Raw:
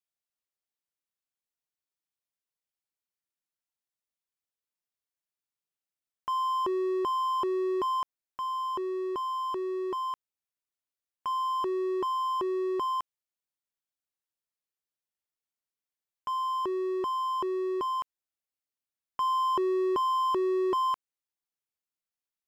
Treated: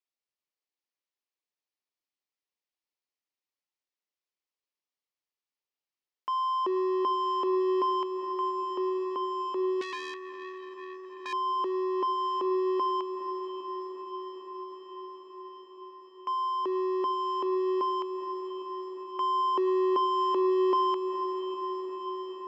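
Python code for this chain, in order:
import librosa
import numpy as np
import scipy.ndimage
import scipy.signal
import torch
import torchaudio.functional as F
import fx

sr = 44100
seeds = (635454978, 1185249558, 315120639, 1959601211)

y = fx.cabinet(x, sr, low_hz=260.0, low_slope=24, high_hz=5600.0, hz=(670.0, 1500.0, 3600.0), db=(-4, -7, -3))
y = fx.echo_diffused(y, sr, ms=465, feedback_pct=79, wet_db=-9.5)
y = fx.transformer_sat(y, sr, knee_hz=2600.0, at=(9.81, 11.33))
y = y * 10.0 ** (1.0 / 20.0)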